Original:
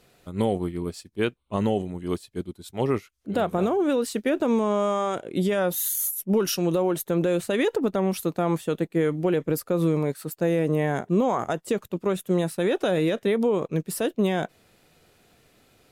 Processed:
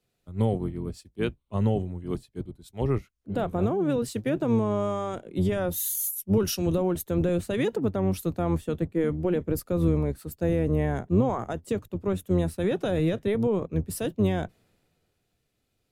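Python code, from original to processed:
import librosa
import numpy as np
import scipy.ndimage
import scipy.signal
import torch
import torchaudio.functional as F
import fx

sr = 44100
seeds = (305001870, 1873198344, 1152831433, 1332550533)

y = fx.octave_divider(x, sr, octaves=1, level_db=-5.0)
y = fx.low_shelf(y, sr, hz=400.0, db=6.0)
y = fx.band_widen(y, sr, depth_pct=40)
y = F.gain(torch.from_numpy(y), -6.0).numpy()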